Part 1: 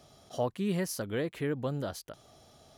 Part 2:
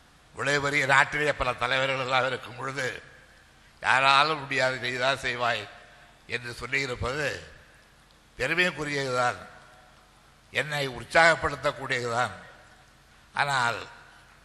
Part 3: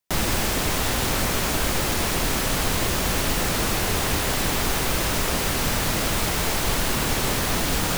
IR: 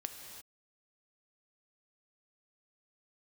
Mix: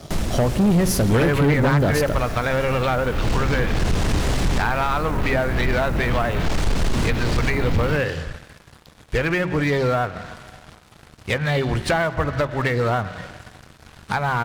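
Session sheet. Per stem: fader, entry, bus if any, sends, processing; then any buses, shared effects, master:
+2.5 dB, 0.00 s, no bus, send −6 dB, downward compressor, threshold −34 dBFS, peak gain reduction 9 dB
+0.5 dB, 0.75 s, bus A, no send, no processing
−13.0 dB, 0.00 s, bus A, send −16.5 dB, sub-octave generator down 2 octaves, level −3 dB; automatic ducking −11 dB, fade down 0.30 s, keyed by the first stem
bus A: 0.0 dB, treble cut that deepens with the level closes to 1,800 Hz, closed at −21.5 dBFS; downward compressor 3 to 1, threshold −33 dBFS, peak gain reduction 13.5 dB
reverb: on, pre-delay 3 ms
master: low-shelf EQ 360 Hz +11.5 dB; hum removal 45.45 Hz, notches 8; leveller curve on the samples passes 3

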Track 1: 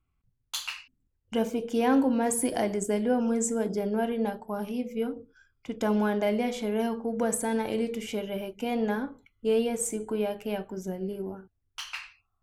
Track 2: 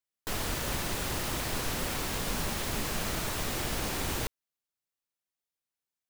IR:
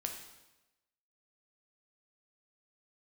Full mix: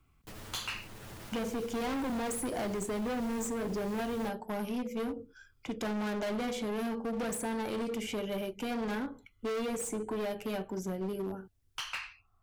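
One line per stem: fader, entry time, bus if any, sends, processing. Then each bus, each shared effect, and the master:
−1.0 dB, 0.00 s, no send, hard clipping −31 dBFS, distortion −6 dB
−16.0 dB, 0.00 s, no send, lower of the sound and its delayed copy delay 9.3 ms; brickwall limiter −29 dBFS, peak gain reduction 8 dB; low-shelf EQ 150 Hz +10.5 dB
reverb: not used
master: multiband upward and downward compressor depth 40%

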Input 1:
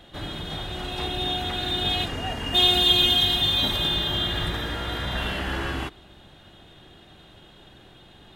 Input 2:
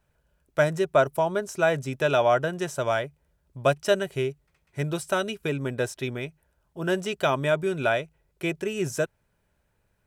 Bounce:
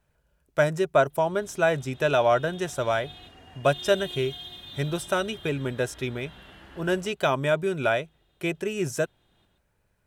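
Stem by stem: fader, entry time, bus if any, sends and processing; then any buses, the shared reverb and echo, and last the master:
−12.0 dB, 1.10 s, no send, echo send −10.5 dB, automatic ducking −12 dB, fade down 1.40 s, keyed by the second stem
0.0 dB, 0.00 s, no send, no echo send, tape wow and flutter 24 cents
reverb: not used
echo: single-tap delay 131 ms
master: no processing

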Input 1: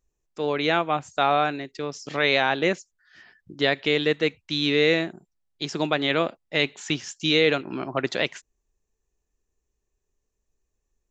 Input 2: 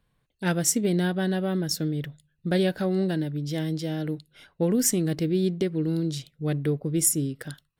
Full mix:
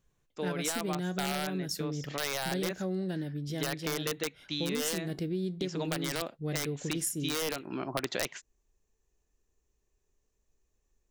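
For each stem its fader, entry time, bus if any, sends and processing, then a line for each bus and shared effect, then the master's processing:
+1.5 dB, 0.00 s, no send, de-essing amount 50%; wrap-around overflow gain 11.5 dB; automatic ducking −8 dB, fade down 0.20 s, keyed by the second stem
−3.0 dB, 0.00 s, no send, tuned comb filter 92 Hz, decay 0.2 s, harmonics all, mix 40%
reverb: not used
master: downward compressor 4 to 1, threshold −30 dBFS, peak gain reduction 10.5 dB

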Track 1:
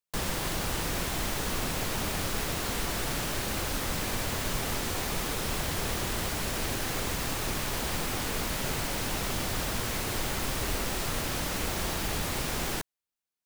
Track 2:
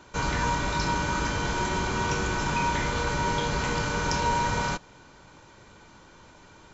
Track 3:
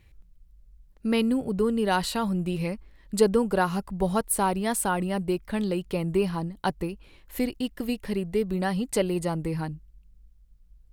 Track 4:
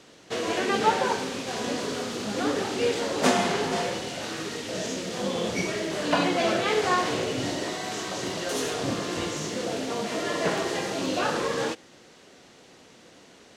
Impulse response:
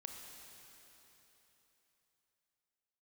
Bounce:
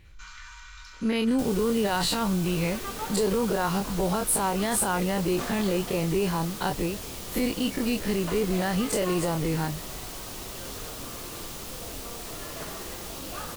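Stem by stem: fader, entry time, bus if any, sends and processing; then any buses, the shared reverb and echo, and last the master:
−9.5 dB, 1.25 s, no bus, no send, parametric band 1,800 Hz −6.5 dB 0.76 octaves
−12.0 dB, 0.05 s, bus A, send −9 dB, soft clipping −21.5 dBFS, distortion −17 dB; Chebyshev high-pass filter 1,200 Hz, order 4; automatic ducking −10 dB, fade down 1.85 s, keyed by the third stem
0.0 dB, 0.00 s, bus A, no send, every bin's largest magnitude spread in time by 60 ms
−15.0 dB, 2.15 s, bus A, no send, parametric band 1,200 Hz +8.5 dB 0.26 octaves
bus A: 0.0 dB, high-shelf EQ 7,800 Hz −10.5 dB; brickwall limiter −17.5 dBFS, peak gain reduction 11 dB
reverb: on, RT60 3.6 s, pre-delay 23 ms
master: high-shelf EQ 3,700 Hz +6 dB

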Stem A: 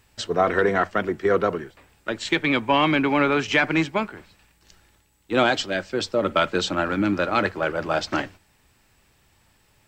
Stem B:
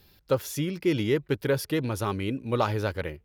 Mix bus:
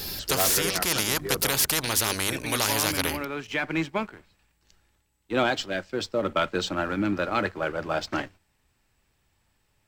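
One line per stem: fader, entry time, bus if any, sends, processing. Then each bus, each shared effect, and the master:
−8.0 dB, 0.00 s, no send, pitch vibrato 0.62 Hz 10 cents; automatic ducking −9 dB, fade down 0.85 s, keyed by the second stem
+2.5 dB, 0.00 s, no send, flat-topped bell 7,600 Hz +9 dB; mains-hum notches 50/100/150/200/250/300/350 Hz; every bin compressed towards the loudest bin 4 to 1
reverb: not used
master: low-shelf EQ 63 Hz +5.5 dB; leveller curve on the samples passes 1

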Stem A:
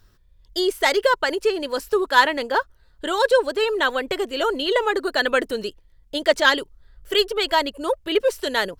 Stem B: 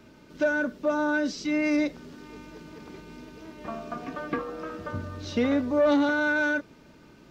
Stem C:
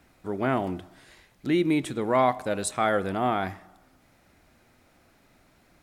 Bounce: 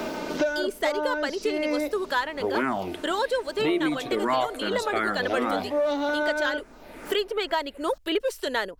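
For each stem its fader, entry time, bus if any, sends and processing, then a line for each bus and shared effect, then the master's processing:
−14.0 dB, 0.00 s, no send, automatic gain control
−8.5 dB, 0.00 s, no send, parametric band 700 Hz +9.5 dB 1.1 octaves
+3.0 dB, 2.15 s, no send, frequency shifter mixed with the dry sound −2.5 Hz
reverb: not used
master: parametric band 120 Hz −11.5 dB 1 octave; multiband upward and downward compressor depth 100%

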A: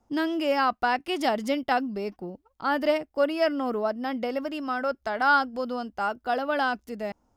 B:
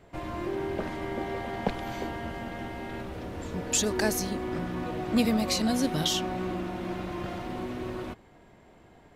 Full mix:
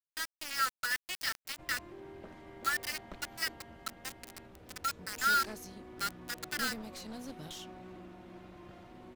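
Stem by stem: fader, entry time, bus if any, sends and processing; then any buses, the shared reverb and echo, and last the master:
+2.0 dB, 0.00 s, no send, dead-zone distortion −38.5 dBFS; Chebyshev high-pass with heavy ripple 1,300 Hz, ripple 9 dB; bit-depth reduction 6 bits, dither none
−17.0 dB, 1.45 s, no send, wavefolder on the positive side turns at −25 dBFS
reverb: not used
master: no processing

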